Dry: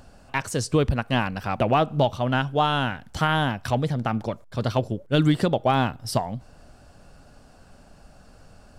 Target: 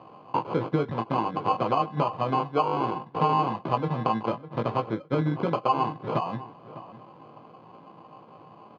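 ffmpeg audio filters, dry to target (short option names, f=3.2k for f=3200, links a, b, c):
-filter_complex "[0:a]equalizer=f=780:t=o:w=0.22:g=11,acompressor=threshold=-24dB:ratio=6,acrusher=samples=24:mix=1:aa=0.000001,highpass=f=130:w=0.5412,highpass=f=130:w=1.3066,equalizer=f=140:t=q:w=4:g=7,equalizer=f=330:t=q:w=4:g=8,equalizer=f=490:t=q:w=4:g=7,equalizer=f=1k:t=q:w=4:g=9,equalizer=f=1.9k:t=q:w=4:g=-3,equalizer=f=2.7k:t=q:w=4:g=-6,lowpass=f=3.4k:w=0.5412,lowpass=f=3.4k:w=1.3066,asplit=2[a][b];[b]adelay=18,volume=-5dB[c];[a][c]amix=inputs=2:normalize=0,asplit=2[d][e];[e]adelay=604,lowpass=f=2.5k:p=1,volume=-15dB,asplit=2[f][g];[g]adelay=604,lowpass=f=2.5k:p=1,volume=0.16[h];[f][h]amix=inputs=2:normalize=0[i];[d][i]amix=inputs=2:normalize=0,volume=-2.5dB"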